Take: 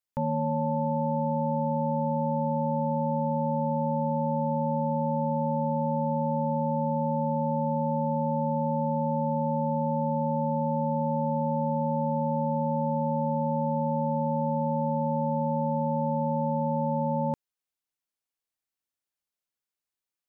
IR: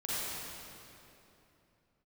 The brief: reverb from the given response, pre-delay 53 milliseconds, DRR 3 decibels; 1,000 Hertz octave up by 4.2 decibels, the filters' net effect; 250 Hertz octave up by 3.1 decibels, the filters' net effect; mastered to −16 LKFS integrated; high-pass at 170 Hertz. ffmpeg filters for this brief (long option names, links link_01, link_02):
-filter_complex "[0:a]highpass=170,equalizer=frequency=250:width_type=o:gain=5,equalizer=frequency=1000:width_type=o:gain=4.5,asplit=2[link_01][link_02];[1:a]atrim=start_sample=2205,adelay=53[link_03];[link_02][link_03]afir=irnorm=-1:irlink=0,volume=-9dB[link_04];[link_01][link_04]amix=inputs=2:normalize=0,volume=7.5dB"